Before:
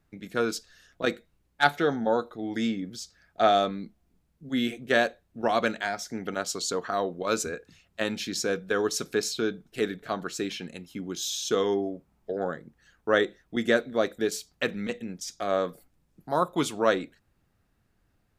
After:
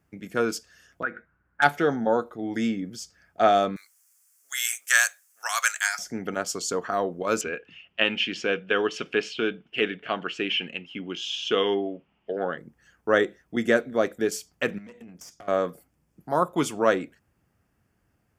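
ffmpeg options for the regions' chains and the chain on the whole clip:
-filter_complex "[0:a]asettb=1/sr,asplit=3[a][b][c];[a]atrim=end=1.034[d];[b]atrim=start=1.03:end=1.62,asetpts=PTS-STARTPTS,afade=t=in:d=0.004:c=qsin,afade=t=out:st=0.586:d=0.004:c=qsin,equalizer=f=420:w=0.99:g=-3.5,acompressor=threshold=-36dB:ratio=4:attack=3.2:release=140:knee=1:detection=peak,lowpass=f=1.5k:t=q:w=8.6[e];[c]atrim=start=1.616[f];[d][e]acrossfade=d=0.004:c1=hsin:c2=qsin[g];[g][f]acrossfade=d=0.004:c1=qsin:c2=hsin,asettb=1/sr,asplit=3[h][i][j];[h]atrim=end=3.764[k];[i]atrim=start=3.76:end=5.99,asetpts=PTS-STARTPTS,afade=t=in:d=0.004:c=qsin,afade=t=out:st=2.226:d=0.004:c=qsin,highpass=f=1.3k:w=0.5412,highpass=f=1.3k:w=1.3066,highshelf=f=4.8k:t=q:w=1.5:g=14,acontrast=81[l];[j]atrim=start=5.986[m];[k][l]acrossfade=d=0.004:c1=hsin:c2=qsin[n];[n][m]acrossfade=d=0.004:c1=qsin:c2=hsin,asettb=1/sr,asplit=3[o][p][q];[o]atrim=end=7.414[r];[p]atrim=start=7.41:end=12.58,asetpts=PTS-STARTPTS,afade=t=in:d=0.004:c=qsin,afade=t=out:st=5.166:d=0.004:c=qsin,lowpass=f=2.9k:t=q:w=7.1,equalizer=f=71:w=0.55:g=-8.5[s];[q]atrim=start=12.576[t];[r][s]acrossfade=d=0.004:c1=hsin:c2=qsin[u];[u][t]acrossfade=d=0.004:c1=qsin:c2=hsin,asettb=1/sr,asplit=3[v][w][x];[v]atrim=end=14.784[y];[w]atrim=start=14.78:end=15.48,asetpts=PTS-STARTPTS,afade=t=in:d=0.004:c=qsin,afade=t=out:st=0.696:d=0.004:c=qsin,acompressor=threshold=-38dB:ratio=12:attack=3.2:release=140:knee=1:detection=peak,aeval=exprs='(tanh(70.8*val(0)+0.65)-tanh(0.65))/70.8':c=same[z];[x]atrim=start=15.476[aa];[y][z]acrossfade=d=0.004:c1=hsin:c2=qsin[ab];[ab][aa]acrossfade=d=0.004:c1=qsin:c2=hsin,highpass=58,equalizer=f=3.9k:t=o:w=0.23:g=-14,volume=2dB"

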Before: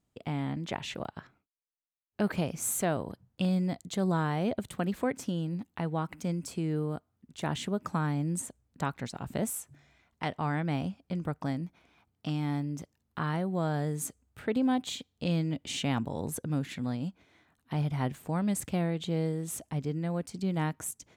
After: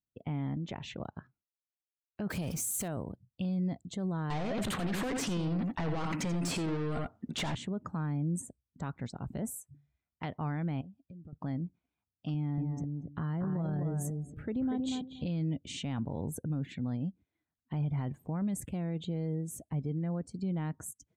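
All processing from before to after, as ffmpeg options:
-filter_complex "[0:a]asettb=1/sr,asplit=3[a][b][c];[a]atrim=end=2.304[d];[b]atrim=start=2.3:end=2.88,asetpts=PTS-STARTPTS,afade=t=in:d=0.004:c=qsin,afade=t=out:st=0.576:d=0.004:c=qsin,aeval=exprs='val(0)+0.5*0.0119*sgn(val(0))':c=same,highshelf=f=4.2k:g=11.5[e];[c]atrim=start=2.876[f];[d][e]acrossfade=d=0.004:c1=hsin:c2=qsin[g];[g][f]acrossfade=d=0.004:c1=qsin:c2=hsin,asettb=1/sr,asplit=3[h][i][j];[h]atrim=end=4.304[k];[i]atrim=start=4.3:end=7.55,asetpts=PTS-STARTPTS,afade=t=in:d=0.004:c=qsin,afade=t=out:st=3.246:d=0.004:c=qsin,asplit=2[l][m];[m]highpass=f=720:p=1,volume=34dB,asoftclip=type=tanh:threshold=-17.5dB[n];[l][n]amix=inputs=2:normalize=0,lowpass=f=3.9k:p=1,volume=-6dB,aecho=1:1:86:0.422,atrim=end_sample=143325[o];[j]atrim=start=7.546[p];[k][o]acrossfade=d=0.004:c1=hsin:c2=qsin[q];[q][p]acrossfade=d=0.004:c1=qsin:c2=hsin,asettb=1/sr,asplit=3[r][s][t];[r]atrim=end=10.814[u];[s]atrim=start=10.81:end=11.33,asetpts=PTS-STARTPTS,afade=t=in:d=0.004:c=qsin,afade=t=out:st=0.516:d=0.004:c=qsin,acompressor=threshold=-46dB:ratio=8:attack=3.2:release=140:knee=1:detection=peak,acrusher=bits=8:mode=log:mix=0:aa=0.000001,asuperstop=centerf=2200:order=4:qfactor=8[v];[t]atrim=start=11.326[w];[u][v]acrossfade=d=0.004:c1=hsin:c2=qsin[x];[x][w]acrossfade=d=0.004:c1=qsin:c2=hsin,asettb=1/sr,asplit=3[y][z][aa];[y]atrim=end=12.344[ab];[z]atrim=start=12.34:end=15.26,asetpts=PTS-STARTPTS,afade=t=in:d=0.004:c=qsin,afade=t=out:st=2.916:d=0.004:c=qsin,lowshelf=f=290:g=6.5,acompressor=threshold=-28dB:ratio=3:attack=3.2:release=140:knee=1:detection=peak,asplit=2[ac][ad];[ad]adelay=237,lowpass=f=2k:p=1,volume=-4dB,asplit=2[ae][af];[af]adelay=237,lowpass=f=2k:p=1,volume=0.18,asplit=2[ag][ah];[ah]adelay=237,lowpass=f=2k:p=1,volume=0.18[ai];[ac][ae][ag][ai]amix=inputs=4:normalize=0,atrim=end_sample=128772[aj];[aa]atrim=start=15.256[ak];[ab][aj]acrossfade=d=0.004:c1=hsin:c2=qsin[al];[al][ak]acrossfade=d=0.004:c1=qsin:c2=hsin,afftdn=nr=21:nf=-49,lowshelf=f=290:g=8.5,alimiter=limit=-20.5dB:level=0:latency=1:release=11,volume=-6dB"

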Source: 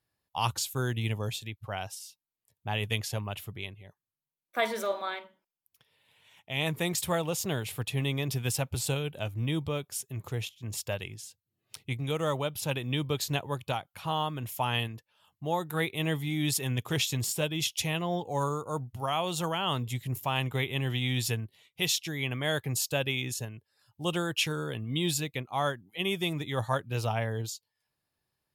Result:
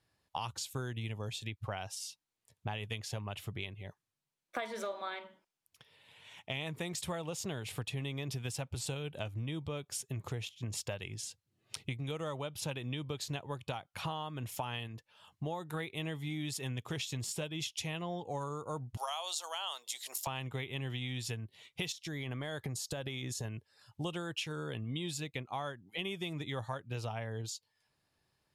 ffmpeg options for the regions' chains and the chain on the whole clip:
-filter_complex "[0:a]asettb=1/sr,asplit=3[a][b][c];[a]atrim=end=18.974[d];[b]atrim=start=18.97:end=20.27,asetpts=PTS-STARTPTS,afade=t=in:d=0.004:c=qsin,afade=t=out:st=1.296:d=0.004:c=qsin,highpass=f=620:w=0.5412,highpass=f=620:w=1.3066,highshelf=f=3.3k:t=q:w=1.5:g=10[e];[c]atrim=start=20.266[f];[d][e]acrossfade=d=0.004:c1=hsin:c2=qsin[g];[g][f]acrossfade=d=0.004:c1=qsin:c2=hsin,asettb=1/sr,asplit=3[h][i][j];[h]atrim=end=21.924[k];[i]atrim=start=21.92:end=23.45,asetpts=PTS-STARTPTS,afade=t=in:d=0.004:c=qsin,afade=t=out:st=1.526:d=0.004:c=qsin,equalizer=f=2.6k:t=o:w=0.45:g=-8,acompressor=threshold=-35dB:ratio=10:attack=3.2:release=140:knee=1:detection=peak[l];[j]atrim=start=23.446[m];[k][l]acrossfade=d=0.004:c1=hsin:c2=qsin[n];[n][m]acrossfade=d=0.004:c1=qsin:c2=hsin,lowpass=9k,acompressor=threshold=-41dB:ratio=10,volume=5.5dB"

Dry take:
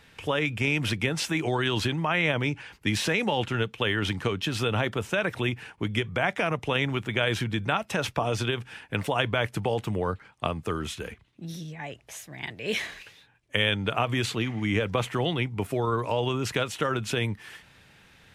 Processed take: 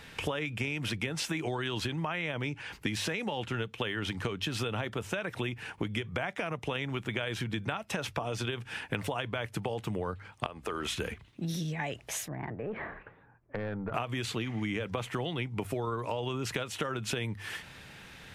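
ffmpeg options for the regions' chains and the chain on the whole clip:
-filter_complex "[0:a]asettb=1/sr,asplit=3[a][b][c];[a]atrim=end=10.464[d];[b]atrim=start=10.46:end=10.96,asetpts=PTS-STARTPTS,afade=t=in:d=0.004:c=qsin,afade=t=out:st=0.496:d=0.004:c=qsin,bass=f=250:g=-14,treble=f=4k:g=-4,acompressor=threshold=-32dB:ratio=5:attack=3.2:release=140:knee=1:detection=peak,aeval=exprs='val(0)+0.00158*(sin(2*PI*60*n/s)+sin(2*PI*2*60*n/s)/2+sin(2*PI*3*60*n/s)/3+sin(2*PI*4*60*n/s)/4+sin(2*PI*5*60*n/s)/5)':c=same[e];[c]atrim=start=10.956[f];[d][e]acrossfade=d=0.004:c1=hsin:c2=qsin[g];[g][f]acrossfade=d=0.004:c1=qsin:c2=hsin,asettb=1/sr,asplit=3[h][i][j];[h]atrim=end=12.284[k];[i]atrim=start=12.28:end=13.94,asetpts=PTS-STARTPTS,afade=t=in:d=0.004:c=qsin,afade=t=out:st=1.656:d=0.004:c=qsin,lowpass=f=1.4k:w=0.5412,lowpass=f=1.4k:w=1.3066,aeval=exprs='(tanh(11.2*val(0)+0.35)-tanh(0.35))/11.2':c=same,acompressor=threshold=-37dB:ratio=6:attack=3.2:release=140:knee=1:detection=peak[l];[j]atrim=start=13.936[m];[k][l]acrossfade=d=0.004:c1=hsin:c2=qsin[n];[n][m]acrossfade=d=0.004:c1=qsin:c2=hsin,bandreject=f=50:t=h:w=6,bandreject=f=100:t=h:w=6,acompressor=threshold=-36dB:ratio=12,volume=6dB"

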